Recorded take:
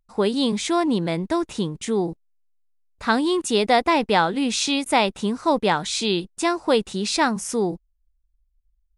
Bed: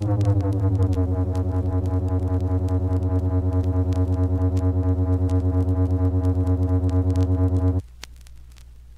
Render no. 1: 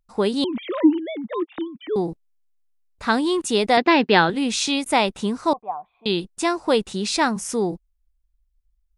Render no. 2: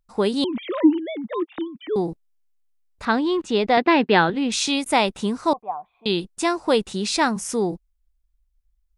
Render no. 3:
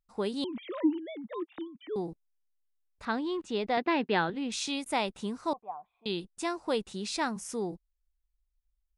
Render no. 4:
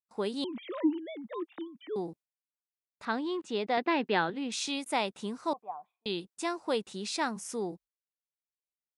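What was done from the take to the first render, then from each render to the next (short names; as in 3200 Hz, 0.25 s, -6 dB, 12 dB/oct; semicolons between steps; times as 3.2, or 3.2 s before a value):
0.44–1.96 sine-wave speech; 3.77–4.3 speaker cabinet 140–5100 Hz, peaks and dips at 170 Hz +6 dB, 250 Hz +5 dB, 370 Hz +8 dB, 1700 Hz +8 dB, 2800 Hz +7 dB, 4300 Hz +6 dB; 5.53–6.06 vocal tract filter a
3.05–4.52 air absorption 150 m
gain -11 dB
Bessel high-pass 180 Hz, order 2; gate with hold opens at -49 dBFS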